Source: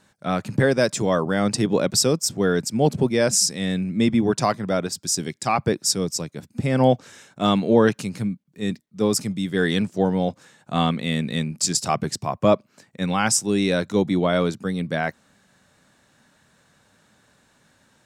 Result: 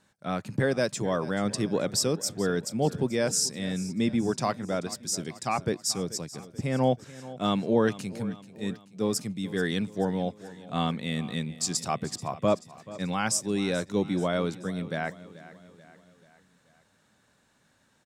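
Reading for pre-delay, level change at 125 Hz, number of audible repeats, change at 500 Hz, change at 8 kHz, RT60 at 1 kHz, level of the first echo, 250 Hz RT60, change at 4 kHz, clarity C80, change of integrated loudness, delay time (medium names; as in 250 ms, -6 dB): no reverb, -7.0 dB, 4, -7.0 dB, -7.0 dB, no reverb, -17.5 dB, no reverb, -7.0 dB, no reverb, -7.0 dB, 434 ms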